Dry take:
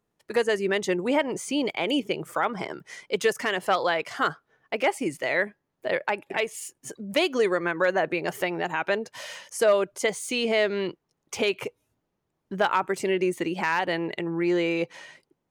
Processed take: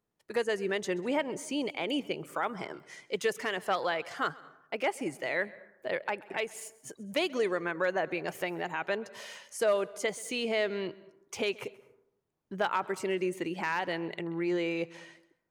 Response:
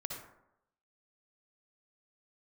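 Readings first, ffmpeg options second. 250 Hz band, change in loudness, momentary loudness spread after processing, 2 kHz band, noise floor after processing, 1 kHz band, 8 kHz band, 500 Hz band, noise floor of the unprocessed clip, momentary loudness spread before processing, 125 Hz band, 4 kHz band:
-6.5 dB, -6.5 dB, 11 LU, -6.5 dB, -77 dBFS, -6.5 dB, -6.5 dB, -6.5 dB, -79 dBFS, 11 LU, -6.5 dB, -6.5 dB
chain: -filter_complex "[0:a]asplit=2[s0][s1];[1:a]atrim=start_sample=2205,adelay=132[s2];[s1][s2]afir=irnorm=-1:irlink=0,volume=0.112[s3];[s0][s3]amix=inputs=2:normalize=0,volume=0.473"

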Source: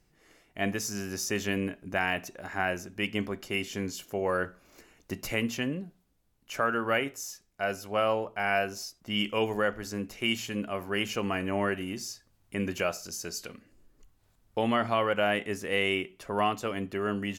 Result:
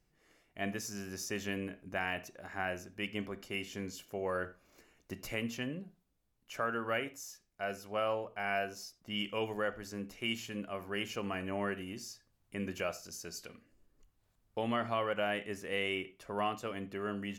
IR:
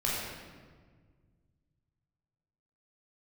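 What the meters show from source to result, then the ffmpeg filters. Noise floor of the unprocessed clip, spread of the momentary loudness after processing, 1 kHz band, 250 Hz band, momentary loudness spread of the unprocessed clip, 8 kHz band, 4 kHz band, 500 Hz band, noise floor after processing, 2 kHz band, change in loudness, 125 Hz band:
-69 dBFS, 11 LU, -7.0 dB, -7.5 dB, 11 LU, -8.0 dB, -7.0 dB, -7.0 dB, -77 dBFS, -7.0 dB, -7.0 dB, -7.5 dB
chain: -filter_complex "[0:a]asplit=2[s0][s1];[s1]lowpass=5200[s2];[1:a]atrim=start_sample=2205,atrim=end_sample=4410[s3];[s2][s3]afir=irnorm=-1:irlink=0,volume=0.106[s4];[s0][s4]amix=inputs=2:normalize=0,volume=0.398"

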